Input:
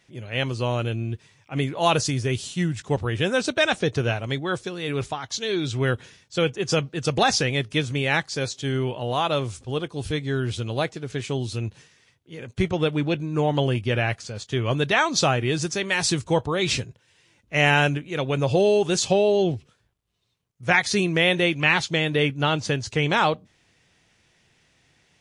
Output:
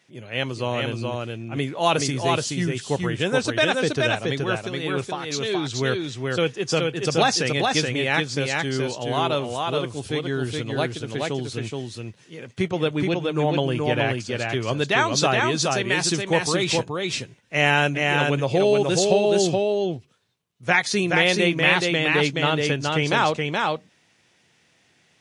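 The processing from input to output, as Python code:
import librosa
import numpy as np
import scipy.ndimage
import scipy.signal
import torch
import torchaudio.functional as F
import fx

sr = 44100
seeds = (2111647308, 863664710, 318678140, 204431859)

p1 = scipy.signal.sosfilt(scipy.signal.butter(2, 140.0, 'highpass', fs=sr, output='sos'), x)
y = p1 + fx.echo_single(p1, sr, ms=424, db=-3.0, dry=0)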